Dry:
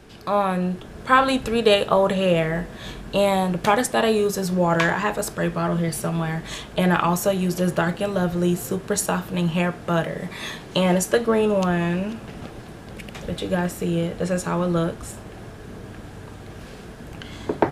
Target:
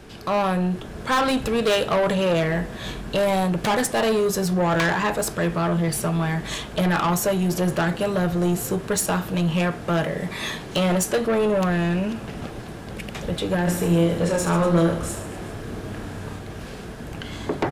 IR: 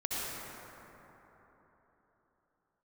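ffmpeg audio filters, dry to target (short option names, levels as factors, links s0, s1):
-filter_complex "[0:a]asoftclip=type=tanh:threshold=0.1,asplit=3[s0][s1][s2];[s0]afade=t=out:st=13.66:d=0.02[s3];[s1]aecho=1:1:30|75|142.5|243.8|395.6:0.631|0.398|0.251|0.158|0.1,afade=t=in:st=13.66:d=0.02,afade=t=out:st=16.38:d=0.02[s4];[s2]afade=t=in:st=16.38:d=0.02[s5];[s3][s4][s5]amix=inputs=3:normalize=0,volume=1.5"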